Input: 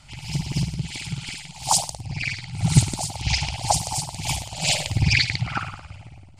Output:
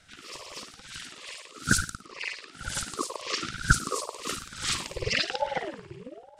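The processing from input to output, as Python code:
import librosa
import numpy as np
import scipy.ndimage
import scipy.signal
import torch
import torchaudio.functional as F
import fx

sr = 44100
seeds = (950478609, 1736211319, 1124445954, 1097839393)

y = fx.filter_sweep_highpass(x, sr, from_hz=680.0, to_hz=130.0, start_s=4.16, end_s=5.6, q=3.6)
y = fx.ring_lfo(y, sr, carrier_hz=480.0, swing_pct=50, hz=1.1)
y = y * 10.0 ** (-4.5 / 20.0)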